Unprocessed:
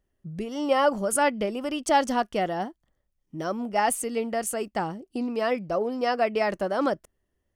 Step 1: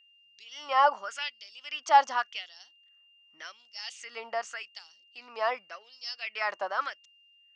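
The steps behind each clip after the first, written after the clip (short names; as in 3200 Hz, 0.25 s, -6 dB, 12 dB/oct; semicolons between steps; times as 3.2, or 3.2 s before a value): LFO high-pass sine 0.87 Hz 890–4700 Hz; steep low-pass 6600 Hz 48 dB/oct; whine 2800 Hz -56 dBFS; gain -3 dB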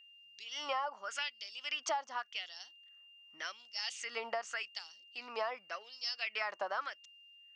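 compressor 16:1, threshold -35 dBFS, peak gain reduction 22 dB; gain +2 dB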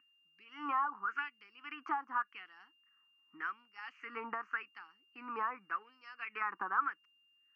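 speaker cabinet 160–2300 Hz, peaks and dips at 190 Hz +6 dB, 290 Hz +10 dB, 570 Hz -8 dB, 1200 Hz +5 dB, 2000 Hz -8 dB; fixed phaser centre 1500 Hz, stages 4; gain +5.5 dB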